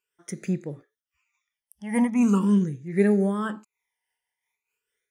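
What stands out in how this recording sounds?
phaser sweep stages 12, 0.42 Hz, lowest notch 410–1,000 Hz
amplitude modulation by smooth noise

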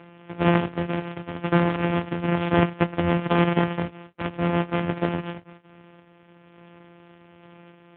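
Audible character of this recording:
a buzz of ramps at a fixed pitch in blocks of 256 samples
sample-and-hold tremolo 3.5 Hz
AMR narrowband

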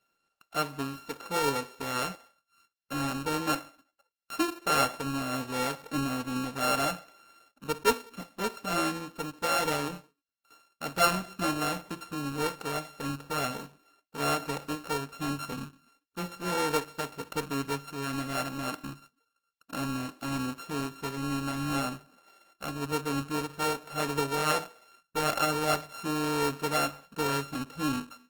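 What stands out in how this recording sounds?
a buzz of ramps at a fixed pitch in blocks of 32 samples
Opus

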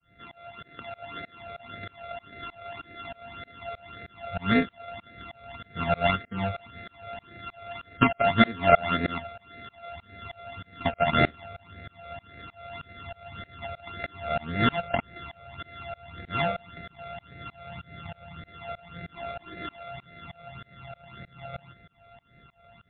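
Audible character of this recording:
a buzz of ramps at a fixed pitch in blocks of 64 samples
tremolo saw up 3.2 Hz, depth 100%
phaser sweep stages 12, 1.8 Hz, lowest notch 300–1,000 Hz
MP3

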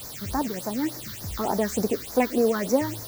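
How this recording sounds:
a quantiser's noise floor 6 bits, dither triangular
phaser sweep stages 6, 3.4 Hz, lowest notch 670–3,000 Hz

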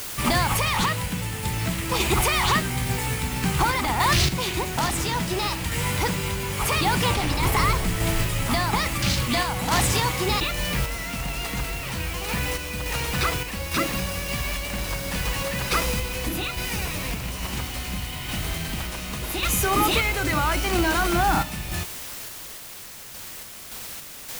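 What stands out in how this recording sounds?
a quantiser's noise floor 6 bits, dither triangular
sample-and-hold tremolo

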